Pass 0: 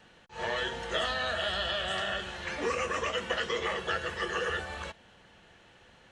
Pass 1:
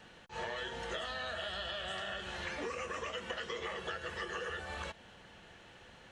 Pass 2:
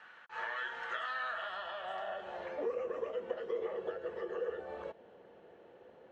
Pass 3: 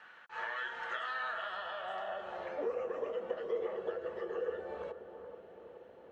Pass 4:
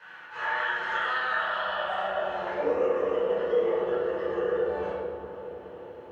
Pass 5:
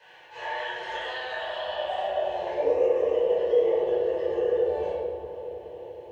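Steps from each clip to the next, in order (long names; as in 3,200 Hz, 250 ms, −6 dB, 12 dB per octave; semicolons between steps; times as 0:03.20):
downward compressor 6 to 1, threshold −39 dBFS, peak gain reduction 12.5 dB; level +1.5 dB
band-pass filter sweep 1,400 Hz → 460 Hz, 0:01.15–0:02.82; level +7.5 dB
bucket-brigade delay 426 ms, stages 4,096, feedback 58%, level −10 dB
rectangular room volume 720 cubic metres, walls mixed, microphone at 5 metres
phaser with its sweep stopped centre 550 Hz, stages 4; level +3.5 dB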